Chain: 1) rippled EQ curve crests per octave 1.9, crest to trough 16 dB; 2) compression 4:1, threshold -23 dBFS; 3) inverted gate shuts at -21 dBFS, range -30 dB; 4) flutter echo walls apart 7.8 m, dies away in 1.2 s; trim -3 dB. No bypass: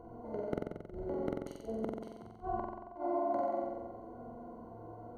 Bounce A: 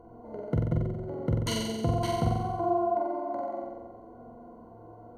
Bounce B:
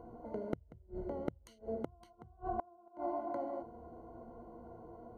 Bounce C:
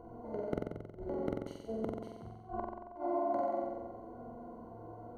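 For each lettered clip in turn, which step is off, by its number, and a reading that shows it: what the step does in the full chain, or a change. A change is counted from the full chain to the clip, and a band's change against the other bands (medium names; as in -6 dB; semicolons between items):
3, momentary loudness spread change +6 LU; 4, momentary loudness spread change -2 LU; 2, 125 Hz band +1.5 dB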